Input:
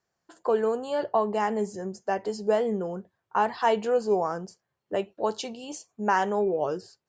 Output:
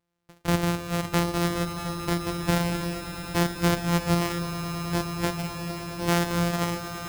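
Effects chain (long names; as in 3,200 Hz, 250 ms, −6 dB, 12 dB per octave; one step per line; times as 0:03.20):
samples sorted by size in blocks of 256 samples
echo that builds up and dies away 107 ms, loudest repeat 8, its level −14.5 dB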